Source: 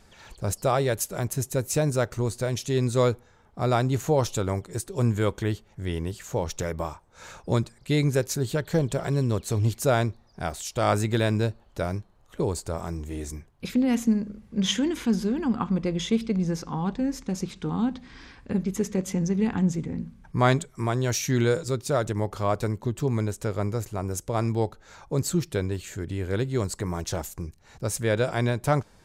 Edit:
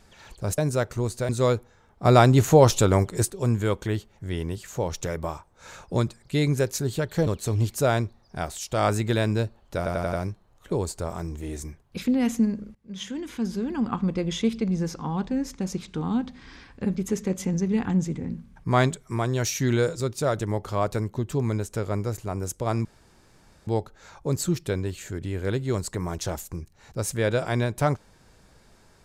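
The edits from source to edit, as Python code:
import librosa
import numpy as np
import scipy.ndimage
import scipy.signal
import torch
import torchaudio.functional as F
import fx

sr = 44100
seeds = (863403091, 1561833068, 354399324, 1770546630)

y = fx.edit(x, sr, fx.cut(start_s=0.58, length_s=1.21),
    fx.cut(start_s=2.5, length_s=0.35),
    fx.clip_gain(start_s=3.61, length_s=1.25, db=7.5),
    fx.cut(start_s=8.83, length_s=0.48),
    fx.stutter(start_s=11.81, slice_s=0.09, count=5),
    fx.fade_in_from(start_s=14.43, length_s=1.21, floor_db=-21.0),
    fx.insert_room_tone(at_s=24.53, length_s=0.82), tone=tone)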